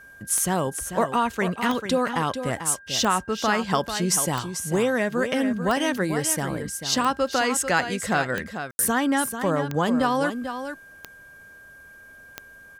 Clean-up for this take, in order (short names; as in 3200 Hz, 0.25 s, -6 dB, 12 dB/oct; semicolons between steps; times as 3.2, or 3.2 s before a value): de-click; notch 1600 Hz, Q 30; room tone fill 8.71–8.79; inverse comb 0.442 s -9 dB